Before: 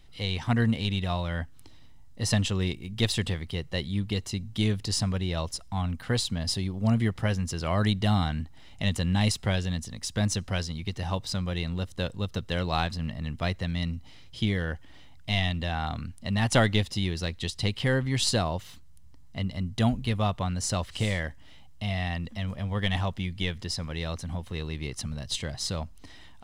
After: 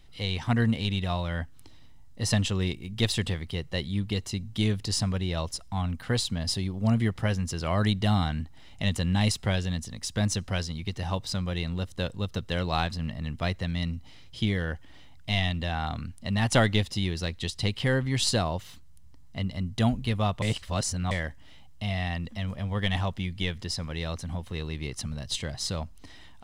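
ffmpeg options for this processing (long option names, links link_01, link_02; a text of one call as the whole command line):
ffmpeg -i in.wav -filter_complex "[0:a]asplit=3[link_01][link_02][link_03];[link_01]atrim=end=20.422[link_04];[link_02]atrim=start=20.418:end=21.112,asetpts=PTS-STARTPTS,areverse[link_05];[link_03]atrim=start=21.108[link_06];[link_04][link_05]acrossfade=duration=0.004:curve1=hsin:curve2=hsin[link_07];[link_07][link_06]acrossfade=duration=0.004:curve1=hsin:curve2=hsin" out.wav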